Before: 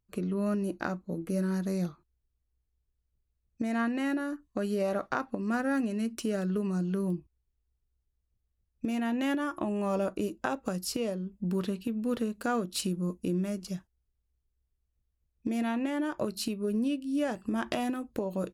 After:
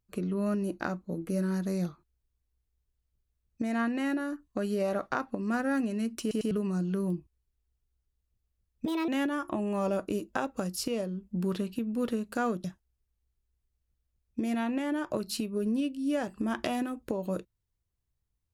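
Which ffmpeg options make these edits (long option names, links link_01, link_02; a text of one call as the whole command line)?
ffmpeg -i in.wav -filter_complex "[0:a]asplit=7[link_01][link_02][link_03][link_04][link_05][link_06][link_07];[link_01]atrim=end=6.312[link_08];[link_02]atrim=start=6.208:end=6.312[link_09];[link_03]atrim=start=6.208:end=6.312[link_10];[link_04]atrim=start=6.508:end=8.864[link_11];[link_05]atrim=start=8.86:end=9.17,asetpts=PTS-STARTPTS,asetrate=61299,aresample=44100,atrim=end_sample=9835,asetpts=PTS-STARTPTS[link_12];[link_06]atrim=start=9.166:end=12.732[link_13];[link_07]atrim=start=13.718[link_14];[link_08][link_09]acrossfade=duration=0.004:curve1=hsin:curve2=hsin[link_15];[link_15][link_10]acrossfade=duration=0.004:curve1=hsin:curve2=hsin[link_16];[link_16][link_11]acrossfade=duration=0.004:curve1=hsin:curve2=hsin[link_17];[link_17][link_12]acrossfade=duration=0.004:curve1=hsin:curve2=hsin[link_18];[link_18][link_13]acrossfade=duration=0.004:curve1=hsin:curve2=hsin[link_19];[link_19][link_14]acrossfade=duration=0.004:curve1=hsin:curve2=hsin" out.wav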